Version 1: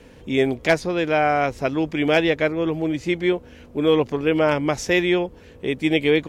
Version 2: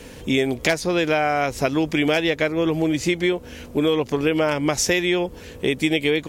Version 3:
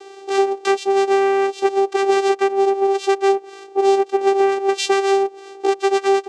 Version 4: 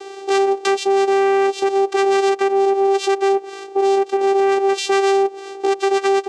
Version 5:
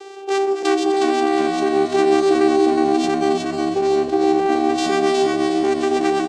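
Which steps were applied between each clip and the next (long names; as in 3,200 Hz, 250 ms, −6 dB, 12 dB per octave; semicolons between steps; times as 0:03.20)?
high-shelf EQ 4,500 Hz +12 dB; downward compressor, threshold −23 dBFS, peak gain reduction 11.5 dB; level +6 dB
high-shelf EQ 3,100 Hz +7 dB; channel vocoder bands 4, saw 392 Hz; level +3.5 dB
brickwall limiter −14.5 dBFS, peak gain reduction 9 dB; level +5.5 dB
feedback delay that plays each chunk backwards 157 ms, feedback 77%, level −10 dB; echo with shifted repeats 364 ms, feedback 36%, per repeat −72 Hz, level −3 dB; level −3.5 dB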